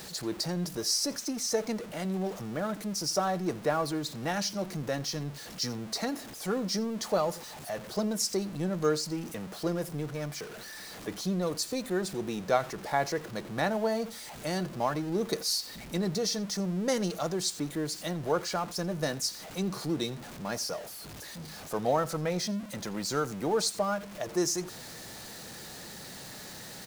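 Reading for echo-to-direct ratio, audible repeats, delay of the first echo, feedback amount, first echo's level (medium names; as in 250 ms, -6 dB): -21.5 dB, 1, 85 ms, no regular repeats, -21.5 dB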